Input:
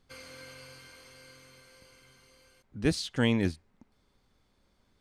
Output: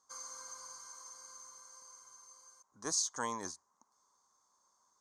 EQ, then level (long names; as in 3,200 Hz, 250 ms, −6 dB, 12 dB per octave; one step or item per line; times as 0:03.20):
pair of resonant band-passes 2,600 Hz, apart 2.6 octaves
high-shelf EQ 4,500 Hz +8 dB
+9.5 dB